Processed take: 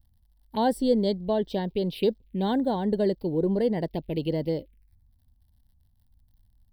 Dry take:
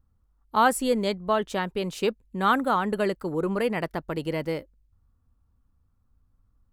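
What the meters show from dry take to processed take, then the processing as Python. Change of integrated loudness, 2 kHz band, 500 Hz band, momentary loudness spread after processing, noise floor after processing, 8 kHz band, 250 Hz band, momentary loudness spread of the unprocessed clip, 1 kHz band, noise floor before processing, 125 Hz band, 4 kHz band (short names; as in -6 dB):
-0.5 dB, -13.5 dB, +1.0 dB, 6 LU, -65 dBFS, under -10 dB, +3.0 dB, 8 LU, -7.5 dB, -68 dBFS, +3.0 dB, -3.0 dB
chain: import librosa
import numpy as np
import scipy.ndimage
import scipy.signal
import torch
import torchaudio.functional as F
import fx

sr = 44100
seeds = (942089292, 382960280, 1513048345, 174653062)

y = fx.peak_eq(x, sr, hz=1300.0, db=-6.5, octaves=0.37)
y = fx.dmg_crackle(y, sr, seeds[0], per_s=75.0, level_db=-54.0)
y = fx.env_phaser(y, sr, low_hz=410.0, high_hz=2500.0, full_db=-24.5)
y = fx.fixed_phaser(y, sr, hz=3000.0, stages=4)
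y = y * 10.0 ** (3.5 / 20.0)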